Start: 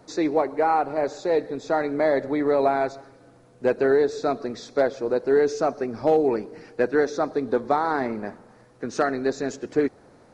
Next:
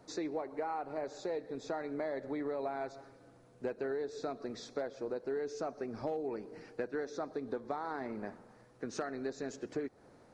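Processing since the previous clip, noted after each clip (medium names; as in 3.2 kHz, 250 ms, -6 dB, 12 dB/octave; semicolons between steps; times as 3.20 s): compression 4:1, threshold -28 dBFS, peak gain reduction 11 dB; trim -7.5 dB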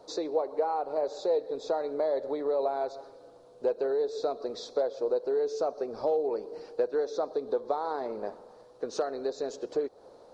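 graphic EQ 125/250/500/1000/2000/4000 Hz -7/-4/+12/+6/-9/+10 dB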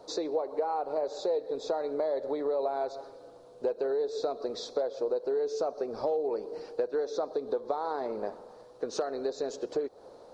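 compression 2:1, threshold -31 dBFS, peak gain reduction 5.5 dB; trim +2 dB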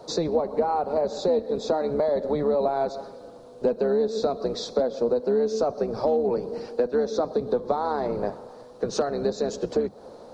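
octave divider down 1 oct, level -2 dB; trim +6.5 dB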